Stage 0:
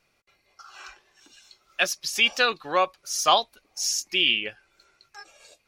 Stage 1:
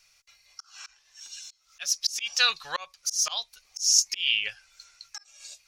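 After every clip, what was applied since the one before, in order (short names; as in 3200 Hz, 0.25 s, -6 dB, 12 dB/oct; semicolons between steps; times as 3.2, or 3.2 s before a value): passive tone stack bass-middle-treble 10-0-10; auto swell 0.399 s; bell 5900 Hz +9.5 dB 0.89 oct; gain +7 dB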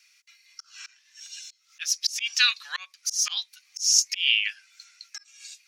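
resonant high-pass 1900 Hz, resonance Q 1.6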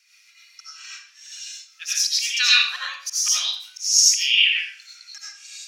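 reverb RT60 0.50 s, pre-delay 50 ms, DRR -7.5 dB; gain -2 dB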